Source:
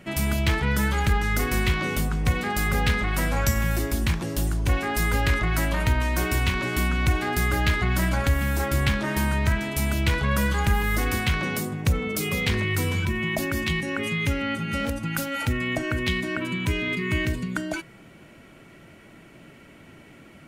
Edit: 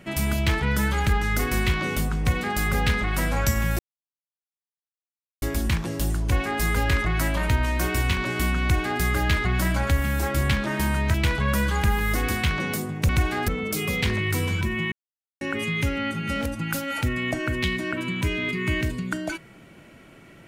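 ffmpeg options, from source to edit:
-filter_complex "[0:a]asplit=7[a][b][c][d][e][f][g];[a]atrim=end=3.79,asetpts=PTS-STARTPTS,afade=t=out:st=3.786:d=0.004:c=hsin,apad=pad_dur=1.63[h];[b]atrim=start=3.79:end=9.512,asetpts=PTS-STARTPTS,afade=t=in:d=0.004:c=hsin[i];[c]atrim=start=9.968:end=11.922[j];[d]atrim=start=6.988:end=7.382[k];[e]atrim=start=11.918:end=13.36,asetpts=PTS-STARTPTS,afade=t=out:st=1.438:d=0.004:c=hsin[l];[f]atrim=start=13.36:end=13.85,asetpts=PTS-STARTPTS,volume=0[m];[g]atrim=start=13.85,asetpts=PTS-STARTPTS,afade=t=in:d=0.004:c=hsin[n];[h][i]concat=n=2:v=0:a=1[o];[o][j]acrossfade=d=0.004:c1=hsin:c2=hsin[p];[p][k]acrossfade=d=0.004:c1=hsin:c2=hsin[q];[l][m][n]concat=n=3:v=0:a=1[r];[q][r]acrossfade=d=0.004:c1=hsin:c2=hsin"

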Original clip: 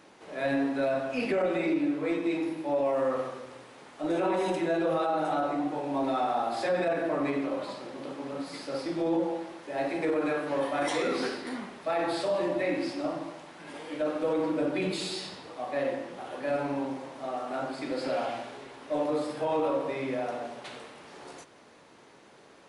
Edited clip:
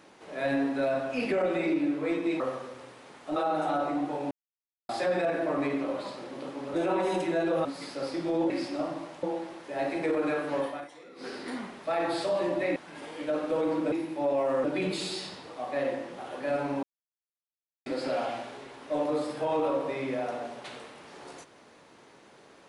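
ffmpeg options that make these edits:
-filter_complex "[0:a]asplit=16[a][b][c][d][e][f][g][h][i][j][k][l][m][n][o][p];[a]atrim=end=2.402[q];[b]atrim=start=3.118:end=4.082[r];[c]atrim=start=4.988:end=5.94,asetpts=PTS-STARTPTS,afade=t=out:st=0.948:d=0.004:c=hsin[s];[d]atrim=start=5.94:end=6.52,asetpts=PTS-STARTPTS,volume=0[t];[e]atrim=start=6.52:end=8.372,asetpts=PTS-STARTPTS,afade=t=in:d=0.004:c=hsin[u];[f]atrim=start=4.078:end=4.992[v];[g]atrim=start=8.368:end=9.222[w];[h]atrim=start=12.748:end=13.482[x];[i]atrim=start=9.218:end=10.87,asetpts=PTS-STARTPTS,afade=t=out:st=1.342:d=0.31:silence=0.0841395[y];[j]atrim=start=10.87:end=11.15,asetpts=PTS-STARTPTS,volume=-21.5dB[z];[k]atrim=start=11.15:end=12.752,asetpts=PTS-STARTPTS,afade=t=in:d=0.31:silence=0.0841395[aa];[l]atrim=start=13.478:end=14.642[ab];[m]atrim=start=2.398:end=3.122[ac];[n]atrim=start=14.638:end=16.83,asetpts=PTS-STARTPTS,afade=t=out:st=2.188:d=0.004:c=hsin[ad];[o]atrim=start=16.83:end=17.86,asetpts=PTS-STARTPTS,volume=0[ae];[p]atrim=start=17.86,asetpts=PTS-STARTPTS,afade=t=in:d=0.004:c=hsin[af];[q][r]acrossfade=d=0.004:c1=hsin:c2=hsin[ag];[s][t][u]concat=n=3:v=0:a=1[ah];[ag][ah]acrossfade=d=0.004:c1=hsin:c2=hsin[ai];[ai][v]acrossfade=d=0.004:c1=hsin:c2=hsin[aj];[aj][w]acrossfade=d=0.004:c1=hsin:c2=hsin[ak];[ak][x]acrossfade=d=0.004:c1=hsin:c2=hsin[al];[y][z][aa]concat=n=3:v=0:a=1[am];[al][am]acrossfade=d=0.004:c1=hsin:c2=hsin[an];[an][ab]acrossfade=d=0.004:c1=hsin:c2=hsin[ao];[ao][ac]acrossfade=d=0.004:c1=hsin:c2=hsin[ap];[ad][ae][af]concat=n=3:v=0:a=1[aq];[ap][aq]acrossfade=d=0.004:c1=hsin:c2=hsin"

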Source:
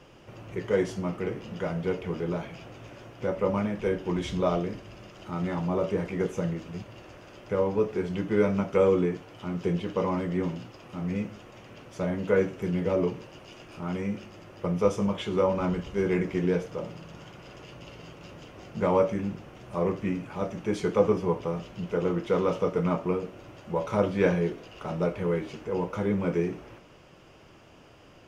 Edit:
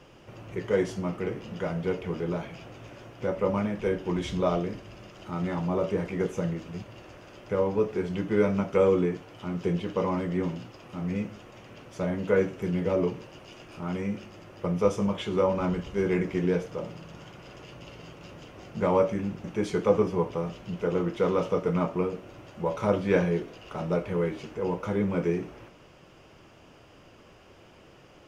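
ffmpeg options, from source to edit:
-filter_complex "[0:a]asplit=2[a][b];[a]atrim=end=19.442[c];[b]atrim=start=20.538[d];[c][d]acrossfade=d=0.004:c1=hsin:c2=hsin"

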